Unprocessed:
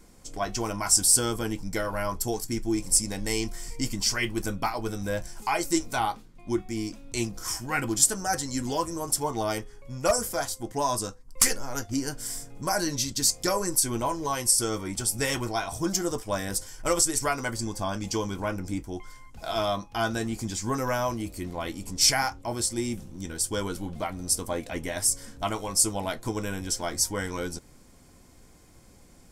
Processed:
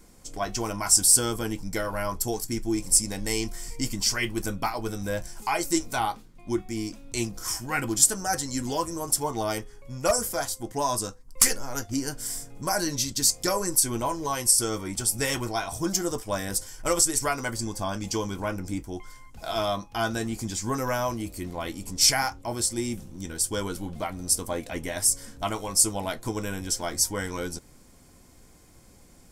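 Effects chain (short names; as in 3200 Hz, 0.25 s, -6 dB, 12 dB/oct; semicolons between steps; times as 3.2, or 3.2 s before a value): high shelf 8700 Hz +4 dB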